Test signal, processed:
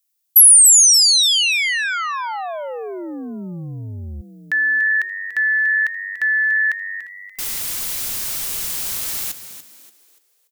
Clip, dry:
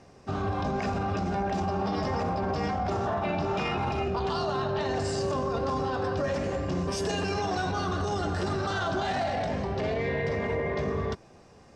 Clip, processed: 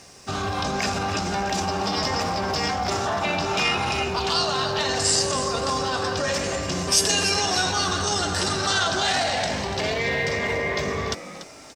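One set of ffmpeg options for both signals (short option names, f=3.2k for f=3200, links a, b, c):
-filter_complex "[0:a]crystalizer=i=10:c=0,asplit=5[a][b][c][d][e];[b]adelay=289,afreqshift=97,volume=-12dB[f];[c]adelay=578,afreqshift=194,volume=-20.9dB[g];[d]adelay=867,afreqshift=291,volume=-29.7dB[h];[e]adelay=1156,afreqshift=388,volume=-38.6dB[i];[a][f][g][h][i]amix=inputs=5:normalize=0"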